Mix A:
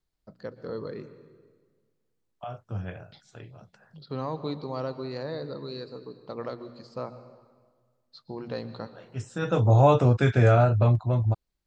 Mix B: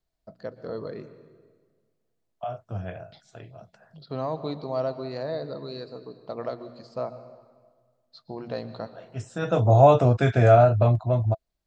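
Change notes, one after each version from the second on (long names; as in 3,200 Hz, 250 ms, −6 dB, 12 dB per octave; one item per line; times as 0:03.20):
master: add parametric band 660 Hz +13 dB 0.22 octaves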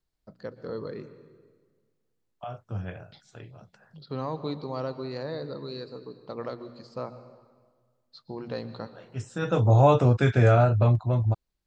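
master: add parametric band 660 Hz −13 dB 0.22 octaves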